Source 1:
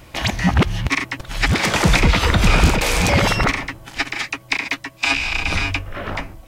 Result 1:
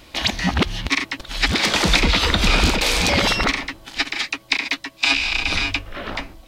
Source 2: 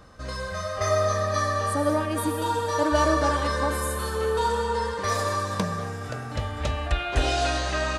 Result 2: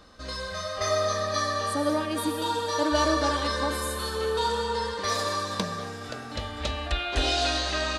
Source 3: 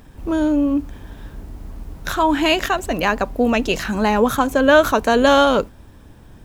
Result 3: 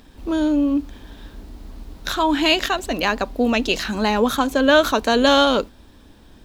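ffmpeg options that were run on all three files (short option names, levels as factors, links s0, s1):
-af "equalizer=f=125:t=o:w=1:g=-9,equalizer=f=250:t=o:w=1:g=4,equalizer=f=4000:t=o:w=1:g=9,volume=0.708"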